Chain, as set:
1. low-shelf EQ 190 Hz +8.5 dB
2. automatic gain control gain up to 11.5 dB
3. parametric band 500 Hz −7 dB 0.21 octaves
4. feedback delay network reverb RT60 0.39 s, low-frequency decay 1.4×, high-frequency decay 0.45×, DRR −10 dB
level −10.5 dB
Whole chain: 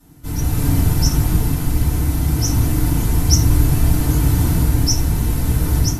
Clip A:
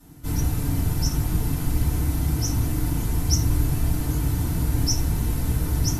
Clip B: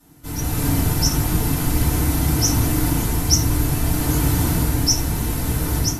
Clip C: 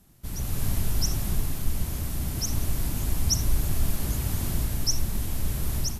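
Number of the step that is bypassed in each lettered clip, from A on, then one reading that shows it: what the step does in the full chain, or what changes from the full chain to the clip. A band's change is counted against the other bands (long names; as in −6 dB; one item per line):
2, change in momentary loudness spread −1 LU
1, 125 Hz band −6.0 dB
4, 4 kHz band +5.0 dB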